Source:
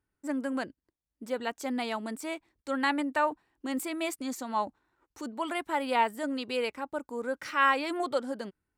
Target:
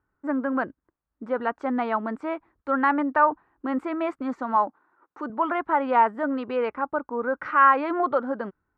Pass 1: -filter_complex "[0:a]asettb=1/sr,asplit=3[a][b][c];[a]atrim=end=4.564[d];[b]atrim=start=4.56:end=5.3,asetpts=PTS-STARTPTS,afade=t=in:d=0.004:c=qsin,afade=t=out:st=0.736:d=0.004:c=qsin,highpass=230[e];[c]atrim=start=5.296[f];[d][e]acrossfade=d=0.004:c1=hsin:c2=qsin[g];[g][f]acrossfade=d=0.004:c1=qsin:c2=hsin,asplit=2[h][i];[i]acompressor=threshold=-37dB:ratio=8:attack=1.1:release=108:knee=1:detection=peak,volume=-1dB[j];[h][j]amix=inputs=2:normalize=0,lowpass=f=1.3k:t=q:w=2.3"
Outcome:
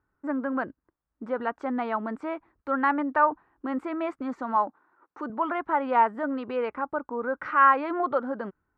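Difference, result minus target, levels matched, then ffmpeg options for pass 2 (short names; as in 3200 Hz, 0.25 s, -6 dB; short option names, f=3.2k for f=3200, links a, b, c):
compressor: peak gain reduction +10 dB
-filter_complex "[0:a]asettb=1/sr,asplit=3[a][b][c];[a]atrim=end=4.564[d];[b]atrim=start=4.56:end=5.3,asetpts=PTS-STARTPTS,afade=t=in:d=0.004:c=qsin,afade=t=out:st=0.736:d=0.004:c=qsin,highpass=230[e];[c]atrim=start=5.296[f];[d][e]acrossfade=d=0.004:c1=hsin:c2=qsin[g];[g][f]acrossfade=d=0.004:c1=qsin:c2=hsin,asplit=2[h][i];[i]acompressor=threshold=-25.5dB:ratio=8:attack=1.1:release=108:knee=1:detection=peak,volume=-1dB[j];[h][j]amix=inputs=2:normalize=0,lowpass=f=1.3k:t=q:w=2.3"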